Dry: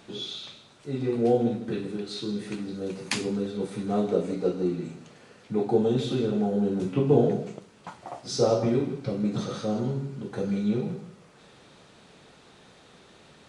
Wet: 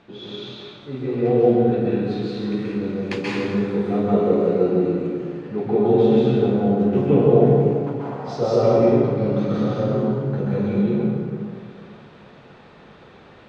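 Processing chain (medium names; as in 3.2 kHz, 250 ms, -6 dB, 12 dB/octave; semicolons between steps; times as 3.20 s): low-pass 2.8 kHz 12 dB/octave; plate-style reverb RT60 2.2 s, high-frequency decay 0.55×, pre-delay 120 ms, DRR -7 dB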